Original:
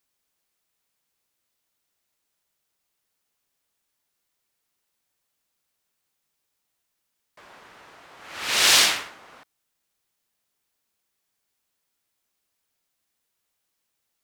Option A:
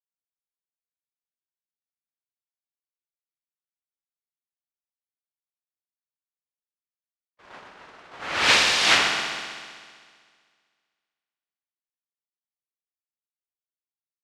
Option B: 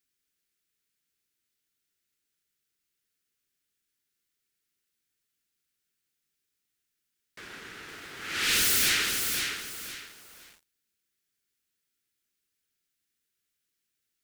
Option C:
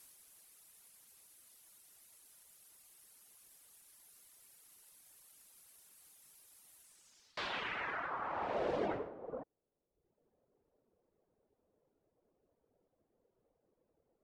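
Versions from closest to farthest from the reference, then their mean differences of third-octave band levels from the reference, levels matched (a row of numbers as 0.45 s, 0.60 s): A, B, C; 7.0 dB, 11.0 dB, 16.0 dB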